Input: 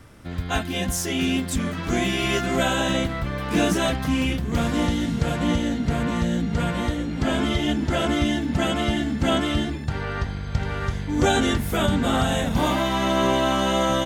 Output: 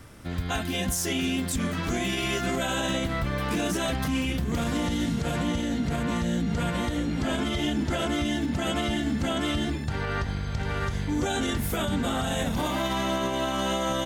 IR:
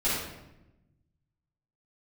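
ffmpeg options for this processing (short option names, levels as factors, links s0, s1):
-af "highshelf=f=5100:g=4.5,alimiter=limit=0.119:level=0:latency=1:release=72"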